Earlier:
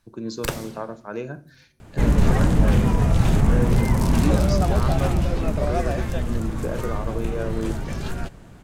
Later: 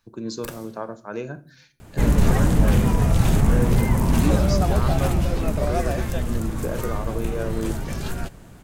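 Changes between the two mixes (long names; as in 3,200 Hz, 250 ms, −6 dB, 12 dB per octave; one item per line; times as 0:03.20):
first sound −12.0 dB
master: add high-shelf EQ 9,300 Hz +11.5 dB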